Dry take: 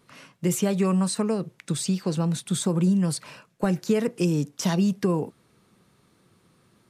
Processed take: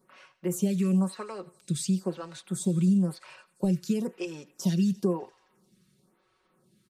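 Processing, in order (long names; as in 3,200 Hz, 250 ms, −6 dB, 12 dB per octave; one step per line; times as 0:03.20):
comb filter 5.4 ms
on a send: feedback echo with a high-pass in the loop 87 ms, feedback 79%, high-pass 800 Hz, level −20.5 dB
on the sum: phaser with staggered stages 0.99 Hz
level −5 dB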